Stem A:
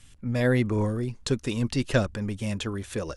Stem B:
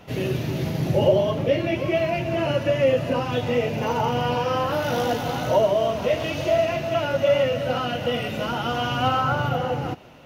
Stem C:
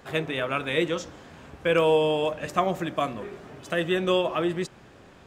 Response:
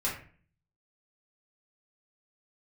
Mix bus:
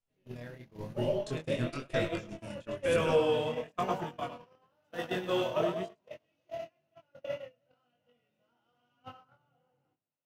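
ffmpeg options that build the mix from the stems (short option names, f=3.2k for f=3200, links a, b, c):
-filter_complex "[0:a]acompressor=threshold=-27dB:ratio=5,volume=-2dB,asplit=3[a][b][c];[b]volume=-17.5dB[d];[c]volume=-15.5dB[e];[1:a]highpass=120,volume=-10.5dB,asplit=2[f][g];[g]volume=-21dB[h];[2:a]dynaudnorm=f=180:g=11:m=3.5dB,adelay=1200,volume=-9.5dB,asplit=3[i][j][k];[j]volume=-22dB[l];[k]volume=-4dB[m];[3:a]atrim=start_sample=2205[n];[d][h][l]amix=inputs=3:normalize=0[o];[o][n]afir=irnorm=-1:irlink=0[p];[e][m]amix=inputs=2:normalize=0,aecho=0:1:106|212|318|424|530:1|0.37|0.137|0.0507|0.0187[q];[a][f][i][p][q]amix=inputs=5:normalize=0,agate=range=-37dB:threshold=-27dB:ratio=16:detection=peak,flanger=delay=19.5:depth=5.9:speed=1"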